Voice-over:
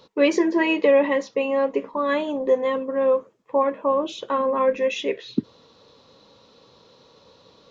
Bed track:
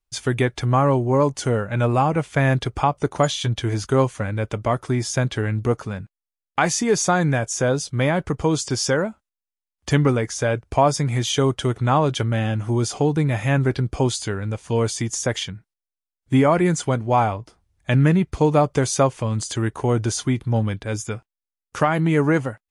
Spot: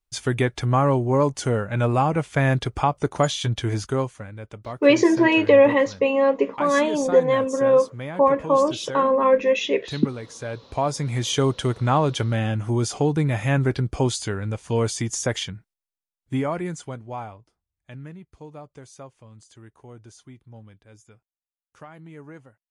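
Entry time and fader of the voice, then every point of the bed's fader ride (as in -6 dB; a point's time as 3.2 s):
4.65 s, +3.0 dB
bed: 3.77 s -1.5 dB
4.31 s -13 dB
10.25 s -13 dB
11.31 s -1.5 dB
15.61 s -1.5 dB
18.18 s -24 dB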